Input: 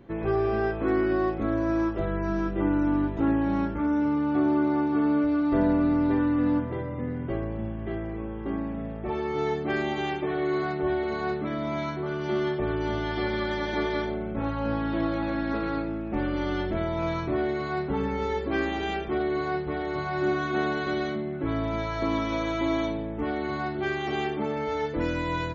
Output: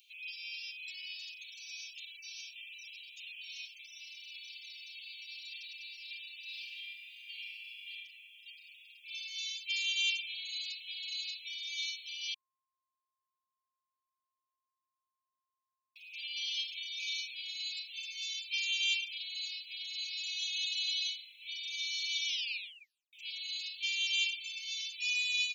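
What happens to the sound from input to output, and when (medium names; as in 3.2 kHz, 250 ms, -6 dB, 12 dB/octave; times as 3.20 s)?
6.44–7.90 s: reverb throw, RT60 1.7 s, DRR -6.5 dB
12.34–15.96 s: bleep 1.06 kHz -6.5 dBFS
22.27 s: tape stop 0.86 s
whole clip: Chebyshev high-pass 2.4 kHz, order 8; treble shelf 5 kHz +11.5 dB; trim +7 dB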